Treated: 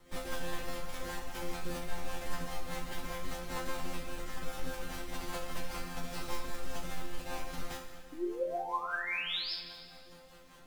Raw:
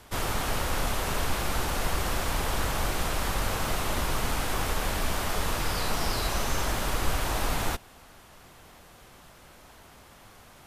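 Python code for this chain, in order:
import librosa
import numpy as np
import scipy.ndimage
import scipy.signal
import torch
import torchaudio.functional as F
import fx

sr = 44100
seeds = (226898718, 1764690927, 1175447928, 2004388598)

y = fx.halfwave_hold(x, sr)
y = fx.over_compress(y, sr, threshold_db=-25.0, ratio=-1.0)
y = fx.spec_paint(y, sr, seeds[0], shape='rise', start_s=8.12, length_s=1.4, low_hz=290.0, high_hz=5300.0, level_db=-23.0)
y = fx.resonator_bank(y, sr, root=53, chord='fifth', decay_s=0.57)
y = fx.rotary(y, sr, hz=5.0)
y = fx.rev_plate(y, sr, seeds[1], rt60_s=1.9, hf_ratio=0.85, predelay_ms=0, drr_db=6.0)
y = F.gain(torch.from_numpy(y), 6.5).numpy()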